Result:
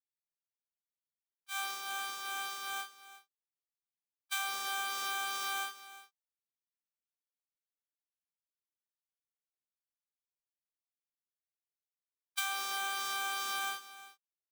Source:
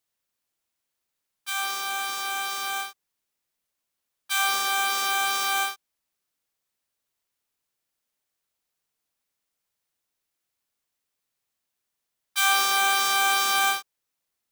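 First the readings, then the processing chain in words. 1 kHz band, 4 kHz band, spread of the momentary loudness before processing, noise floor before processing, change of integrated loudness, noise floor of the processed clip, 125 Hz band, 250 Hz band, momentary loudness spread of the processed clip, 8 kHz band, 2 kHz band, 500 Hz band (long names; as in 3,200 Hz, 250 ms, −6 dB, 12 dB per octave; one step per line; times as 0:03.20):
−13.0 dB, −12.5 dB, 11 LU, −83 dBFS, −12.5 dB, below −85 dBFS, can't be measured, −12.5 dB, 14 LU, −12.5 dB, −12.5 dB, −13.0 dB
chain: downward expander −21 dBFS
downward compressor 16 to 1, threshold −32 dBFS, peak gain reduction 16 dB
on a send: single-tap delay 354 ms −15.5 dB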